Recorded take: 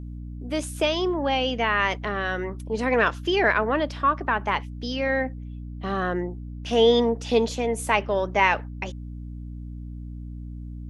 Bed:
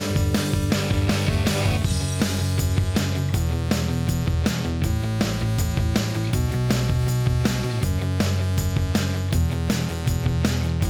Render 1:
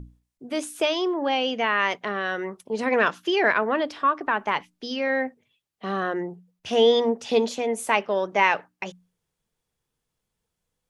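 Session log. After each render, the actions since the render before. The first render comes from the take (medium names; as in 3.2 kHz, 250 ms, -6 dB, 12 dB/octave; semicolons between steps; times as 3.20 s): hum notches 60/120/180/240/300 Hz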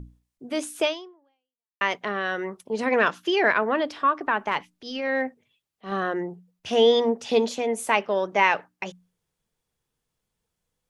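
0.87–1.81 s: fade out exponential; 4.46–5.92 s: transient shaper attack -10 dB, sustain 0 dB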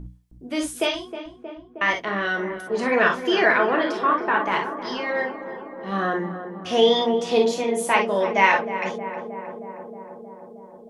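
on a send: filtered feedback delay 314 ms, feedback 82%, low-pass 1.4 kHz, level -10 dB; on the sum: gated-style reverb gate 80 ms flat, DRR 0.5 dB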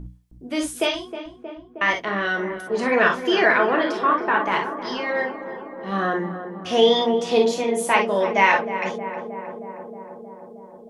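trim +1 dB; peak limiter -3 dBFS, peak gain reduction 1.5 dB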